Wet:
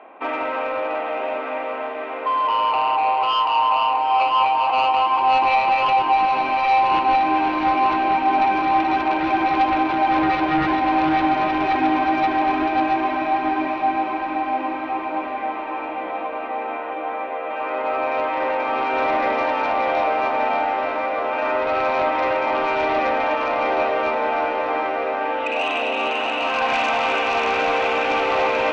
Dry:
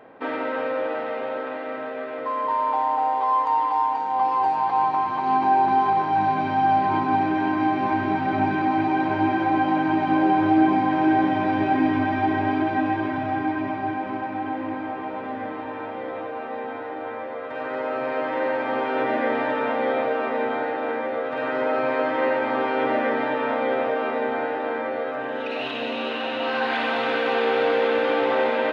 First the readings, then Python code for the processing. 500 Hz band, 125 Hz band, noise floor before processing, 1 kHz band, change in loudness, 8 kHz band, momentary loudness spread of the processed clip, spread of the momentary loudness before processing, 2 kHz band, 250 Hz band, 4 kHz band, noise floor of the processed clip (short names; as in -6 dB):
+1.0 dB, -5.5 dB, -32 dBFS, +4.5 dB, +3.0 dB, n/a, 9 LU, 11 LU, +3.5 dB, -2.0 dB, +7.0 dB, -28 dBFS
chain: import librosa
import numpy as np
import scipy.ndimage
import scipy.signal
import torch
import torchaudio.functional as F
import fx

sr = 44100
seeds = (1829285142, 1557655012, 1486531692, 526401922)

y = fx.cabinet(x, sr, low_hz=260.0, low_slope=24, high_hz=3300.0, hz=(260.0, 470.0, 710.0, 1100.0, 1700.0, 2500.0), db=(-5, -8, 4, 5, -7, 8))
y = fx.fold_sine(y, sr, drive_db=8, ceiling_db=-8.0)
y = fx.echo_diffused(y, sr, ms=924, feedback_pct=53, wet_db=-7.0)
y = y * librosa.db_to_amplitude(-8.0)